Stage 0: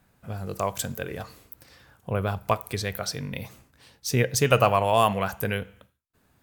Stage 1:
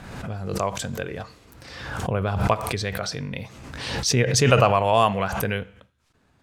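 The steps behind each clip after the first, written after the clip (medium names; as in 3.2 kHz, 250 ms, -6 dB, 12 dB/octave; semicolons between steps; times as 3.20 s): low-pass 6.5 kHz 12 dB/octave; swell ahead of each attack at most 42 dB/s; trim +1.5 dB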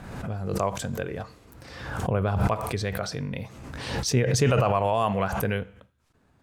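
peak limiter -11.5 dBFS, peak gain reduction 7 dB; peaking EQ 3.9 kHz -5.5 dB 2.6 oct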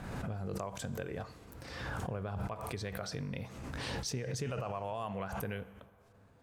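compression 6:1, threshold -33 dBFS, peak gain reduction 15 dB; plate-style reverb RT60 3.6 s, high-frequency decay 0.5×, DRR 19 dB; trim -2.5 dB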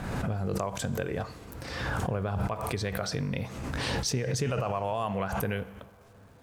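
crackle 500 per s -65 dBFS; trim +8 dB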